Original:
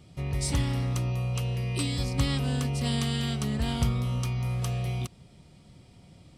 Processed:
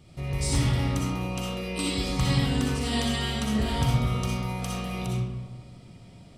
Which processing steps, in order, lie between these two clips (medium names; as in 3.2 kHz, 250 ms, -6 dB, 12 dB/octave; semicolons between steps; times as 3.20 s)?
algorithmic reverb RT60 1.4 s, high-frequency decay 0.5×, pre-delay 20 ms, DRR -4.5 dB; trim -1 dB